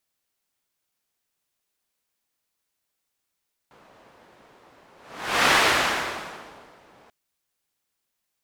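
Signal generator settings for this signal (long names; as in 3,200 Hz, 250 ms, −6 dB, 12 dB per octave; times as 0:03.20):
pass-by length 3.39 s, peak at 0:01.79, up 0.60 s, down 1.48 s, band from 750 Hz, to 1,700 Hz, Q 0.73, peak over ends 35.5 dB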